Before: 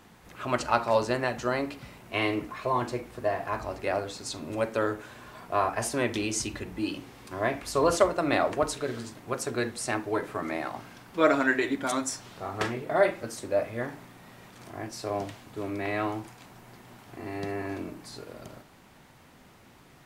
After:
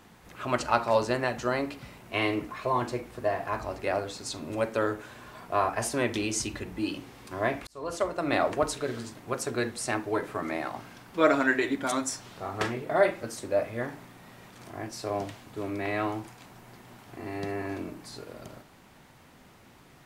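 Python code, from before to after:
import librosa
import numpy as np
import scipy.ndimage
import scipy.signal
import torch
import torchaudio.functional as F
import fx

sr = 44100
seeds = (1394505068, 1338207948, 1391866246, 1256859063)

y = fx.edit(x, sr, fx.fade_in_span(start_s=7.67, length_s=0.76), tone=tone)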